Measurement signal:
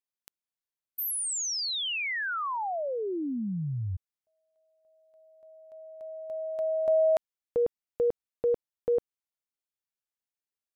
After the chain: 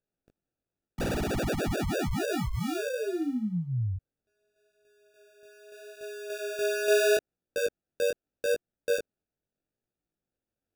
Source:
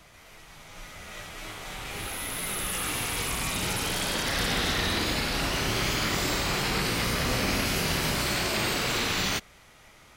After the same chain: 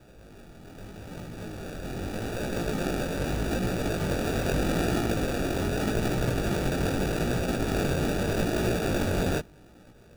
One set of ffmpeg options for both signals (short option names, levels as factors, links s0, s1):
-filter_complex "[0:a]acrossover=split=480[s0][s1];[s0]alimiter=level_in=1.88:limit=0.0631:level=0:latency=1,volume=0.531[s2];[s1]acrusher=samples=42:mix=1:aa=0.000001[s3];[s2][s3]amix=inputs=2:normalize=0,flanger=delay=16.5:depth=6.1:speed=0.81,volume=1.78"